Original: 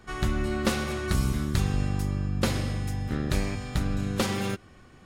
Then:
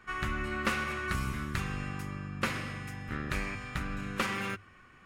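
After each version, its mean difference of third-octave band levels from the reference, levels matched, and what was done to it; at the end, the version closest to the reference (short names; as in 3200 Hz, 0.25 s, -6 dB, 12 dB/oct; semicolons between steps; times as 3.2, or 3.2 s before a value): 3.0 dB: band shelf 1700 Hz +10.5 dB; notches 50/100 Hz; gain -8.5 dB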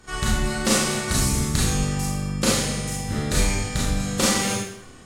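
6.0 dB: bell 7900 Hz +11.5 dB 1.3 oct; Schroeder reverb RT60 0.66 s, combs from 26 ms, DRR -5 dB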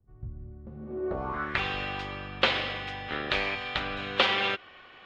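12.5 dB: three-band isolator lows -21 dB, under 450 Hz, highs -14 dB, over 5000 Hz; low-pass sweep 110 Hz -> 3200 Hz, 0.66–1.65; gain +5.5 dB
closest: first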